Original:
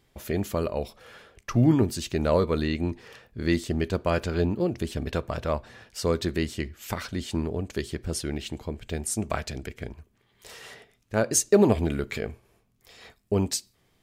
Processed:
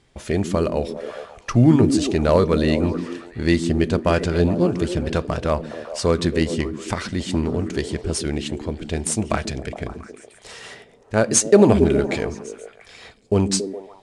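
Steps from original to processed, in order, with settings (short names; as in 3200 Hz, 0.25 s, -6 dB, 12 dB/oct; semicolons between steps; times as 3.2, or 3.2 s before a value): delay with a stepping band-pass 0.138 s, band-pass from 220 Hz, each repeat 0.7 oct, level -4 dB; gain +6 dB; IMA ADPCM 88 kbps 22050 Hz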